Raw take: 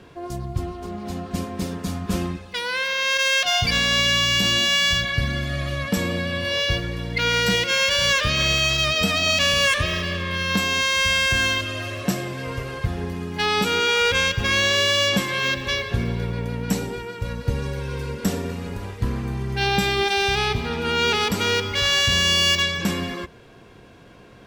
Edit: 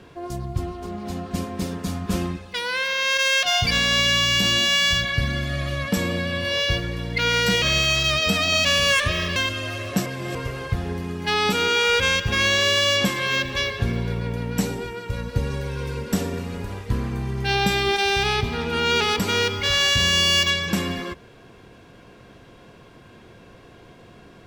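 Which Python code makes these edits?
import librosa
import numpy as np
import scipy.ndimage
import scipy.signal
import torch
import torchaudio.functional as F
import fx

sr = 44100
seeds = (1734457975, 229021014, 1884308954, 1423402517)

y = fx.edit(x, sr, fx.cut(start_s=7.62, length_s=0.74),
    fx.cut(start_s=10.1, length_s=1.38),
    fx.reverse_span(start_s=12.18, length_s=0.29), tone=tone)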